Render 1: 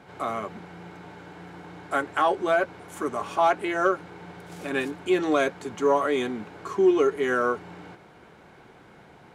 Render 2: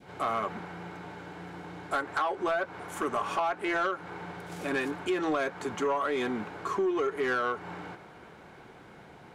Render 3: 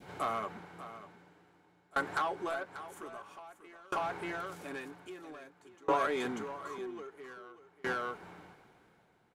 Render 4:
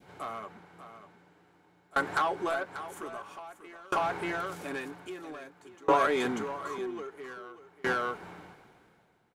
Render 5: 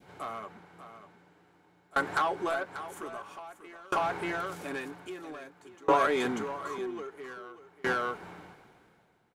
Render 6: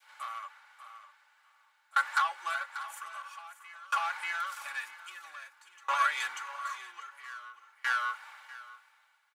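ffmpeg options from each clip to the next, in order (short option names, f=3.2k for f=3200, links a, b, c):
-af "adynamicequalizer=threshold=0.0141:dfrequency=1200:dqfactor=0.71:tfrequency=1200:tqfactor=0.71:attack=5:release=100:ratio=0.375:range=3.5:mode=boostabove:tftype=bell,acompressor=threshold=-23dB:ratio=10,asoftclip=type=tanh:threshold=-21.5dB"
-filter_complex "[0:a]highshelf=f=8.5k:g=8,asplit=2[a][b];[b]aecho=0:1:589:0.562[c];[a][c]amix=inputs=2:normalize=0,aeval=exprs='val(0)*pow(10,-29*if(lt(mod(0.51*n/s,1),2*abs(0.51)/1000),1-mod(0.51*n/s,1)/(2*abs(0.51)/1000),(mod(0.51*n/s,1)-2*abs(0.51)/1000)/(1-2*abs(0.51)/1000))/20)':c=same"
-af "dynaudnorm=f=620:g=5:m=10dB,volume=-4.5dB"
-af anull
-af "highpass=f=1.1k:w=0.5412,highpass=f=1.1k:w=1.3066,aecho=1:1:3.5:0.64,aecho=1:1:644:0.126,volume=1dB"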